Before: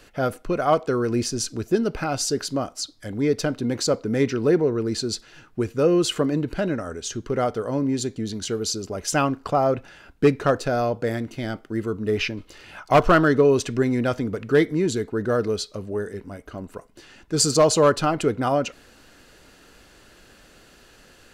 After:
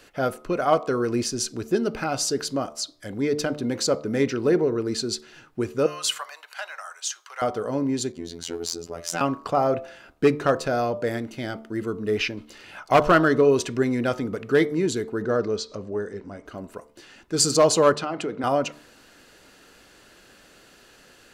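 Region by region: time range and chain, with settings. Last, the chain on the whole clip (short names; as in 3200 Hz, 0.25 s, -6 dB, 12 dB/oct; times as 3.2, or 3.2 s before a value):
5.86–7.42 steep high-pass 790 Hz + high shelf 6900 Hz +5.5 dB
8.12–9.21 tube stage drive 18 dB, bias 0.35 + robotiser 84.6 Hz
15.24–16.47 LPF 6900 Hz 24 dB/oct + bell 2900 Hz -4.5 dB 1.3 oct + upward compressor, threshold -32 dBFS
17.96–18.44 HPF 170 Hz + compressor, threshold -22 dBFS + air absorption 64 m
whole clip: low shelf 100 Hz -10.5 dB; de-hum 74.29 Hz, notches 17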